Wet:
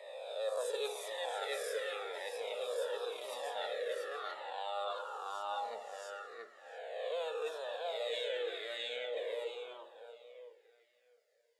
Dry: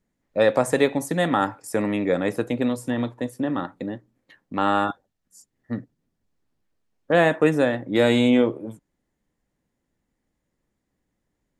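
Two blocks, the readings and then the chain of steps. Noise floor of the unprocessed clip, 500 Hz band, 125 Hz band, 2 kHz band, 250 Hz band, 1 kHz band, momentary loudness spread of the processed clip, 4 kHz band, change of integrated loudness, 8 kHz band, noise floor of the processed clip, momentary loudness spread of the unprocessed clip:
−78 dBFS, −14.0 dB, below −40 dB, −15.0 dB, below −40 dB, −13.5 dB, 12 LU, −7.0 dB, −17.5 dB, −11.0 dB, −72 dBFS, 15 LU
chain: peak hold with a rise ahead of every peak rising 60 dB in 0.84 s
elliptic high-pass filter 450 Hz, stop band 40 dB
parametric band 4,700 Hz +9.5 dB 0.32 octaves
on a send: tape delay 677 ms, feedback 23%, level −3 dB, low-pass 5,300 Hz
on the sum: dense smooth reverb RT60 1.9 s, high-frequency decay 0.9×, DRR 10 dB
dynamic equaliser 3,600 Hz, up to +6 dB, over −44 dBFS, Q 2.1
auto-filter notch sine 0.43 Hz 920–2,100 Hz
reversed playback
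downward compressor 10 to 1, threshold −33 dBFS, peak gain reduction 19.5 dB
reversed playback
flanger whose copies keep moving one way falling 0.92 Hz
level +1.5 dB

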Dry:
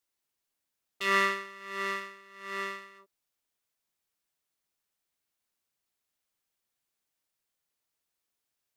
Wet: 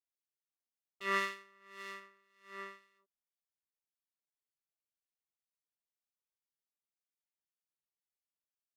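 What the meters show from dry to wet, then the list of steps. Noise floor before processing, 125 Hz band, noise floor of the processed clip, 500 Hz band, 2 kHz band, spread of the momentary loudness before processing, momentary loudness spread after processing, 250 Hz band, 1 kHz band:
−85 dBFS, can't be measured, below −85 dBFS, −8.5 dB, −9.0 dB, 19 LU, 18 LU, −8.5 dB, −8.5 dB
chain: two-band tremolo in antiphase 1.9 Hz, depth 50%, crossover 2,300 Hz
expander for the loud parts 1.5 to 1, over −49 dBFS
level −4.5 dB

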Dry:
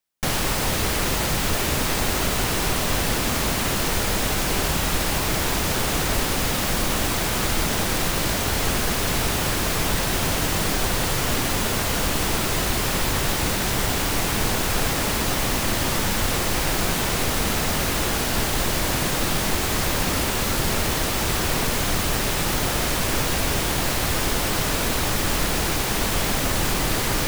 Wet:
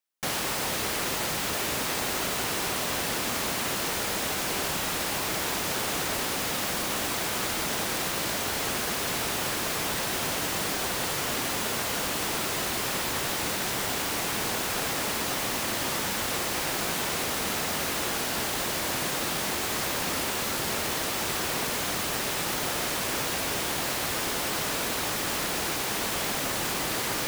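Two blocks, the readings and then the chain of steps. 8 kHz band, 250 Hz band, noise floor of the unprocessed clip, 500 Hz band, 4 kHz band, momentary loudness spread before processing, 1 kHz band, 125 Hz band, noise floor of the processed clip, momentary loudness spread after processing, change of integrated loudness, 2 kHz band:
−4.5 dB, −8.5 dB, −24 dBFS, −6.0 dB, −4.5 dB, 0 LU, −5.0 dB, −13.0 dB, −30 dBFS, 0 LU, −5.5 dB, −4.5 dB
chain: high-pass filter 290 Hz 6 dB per octave
level −4.5 dB

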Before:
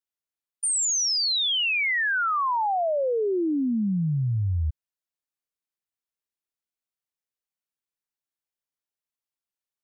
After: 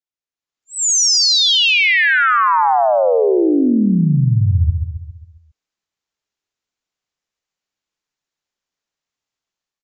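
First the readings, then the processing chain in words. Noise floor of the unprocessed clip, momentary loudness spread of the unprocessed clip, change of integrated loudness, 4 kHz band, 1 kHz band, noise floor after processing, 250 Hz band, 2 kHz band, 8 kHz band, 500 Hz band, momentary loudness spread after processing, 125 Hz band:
below −85 dBFS, 5 LU, +10.5 dB, +11.0 dB, +11.0 dB, below −85 dBFS, +11.0 dB, +11.0 dB, +8.5 dB, +11.0 dB, 9 LU, +11.0 dB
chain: automatic gain control gain up to 12 dB
on a send: repeating echo 135 ms, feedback 50%, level −5.5 dB
on the sum: downsampling to 16,000 Hz
level −2.5 dB

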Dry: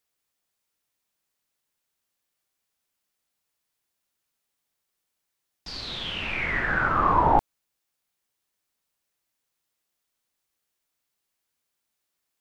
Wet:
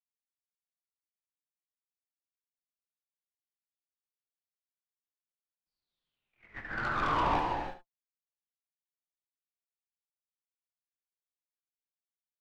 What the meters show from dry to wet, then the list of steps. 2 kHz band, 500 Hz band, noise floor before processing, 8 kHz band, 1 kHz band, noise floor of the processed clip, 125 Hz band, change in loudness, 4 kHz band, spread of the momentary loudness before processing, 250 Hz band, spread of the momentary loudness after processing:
−10.5 dB, −8.5 dB, −81 dBFS, can't be measured, −8.5 dB, below −85 dBFS, −10.0 dB, −7.5 dB, −13.0 dB, 13 LU, −8.0 dB, 17 LU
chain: noise gate −23 dBFS, range −53 dB
flanger 0.68 Hz, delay 5.3 ms, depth 4.6 ms, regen +55%
soft clipping −25.5 dBFS, distortion −9 dB
on a send: single-tap delay 71 ms −11 dB
on the sum: reverb whose tail is shaped and stops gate 360 ms flat, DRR 1 dB
level −2 dB

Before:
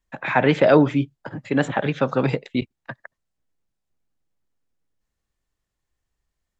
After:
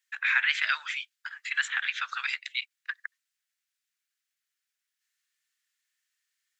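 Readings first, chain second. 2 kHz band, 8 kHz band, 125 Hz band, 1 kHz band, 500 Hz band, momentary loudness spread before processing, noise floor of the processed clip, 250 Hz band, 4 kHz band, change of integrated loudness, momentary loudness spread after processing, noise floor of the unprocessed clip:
+1.5 dB, can't be measured, below −40 dB, −13.0 dB, below −40 dB, 21 LU, below −85 dBFS, below −40 dB, +3.0 dB, −8.0 dB, 15 LU, −82 dBFS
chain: Butterworth high-pass 1,500 Hz 36 dB per octave
in parallel at 0 dB: downward compressor, threshold −36 dBFS, peak gain reduction 14 dB

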